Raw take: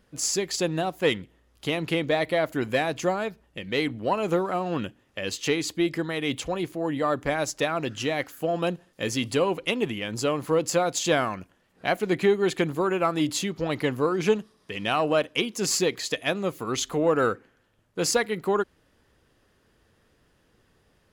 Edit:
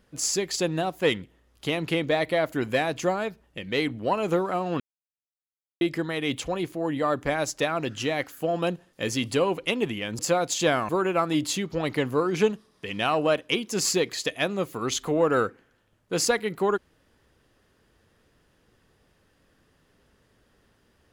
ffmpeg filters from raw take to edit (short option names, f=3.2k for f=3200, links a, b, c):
-filter_complex "[0:a]asplit=5[a][b][c][d][e];[a]atrim=end=4.8,asetpts=PTS-STARTPTS,afade=t=out:st=4.796:d=0.004:c=hsin[f];[b]atrim=start=4.8:end=5.81,asetpts=PTS-STARTPTS,volume=0[g];[c]atrim=start=5.81:end=10.192,asetpts=PTS-STARTPTS,afade=t=in:d=0.004:c=hsin[h];[d]atrim=start=10.638:end=11.342[i];[e]atrim=start=12.748[j];[f][g][h]concat=n=3:v=0:a=1[k];[k][i]acrossfade=d=0.004:c1=hsin:c2=hsin[l];[l][j]acrossfade=d=0.004:c1=hsin:c2=hsin"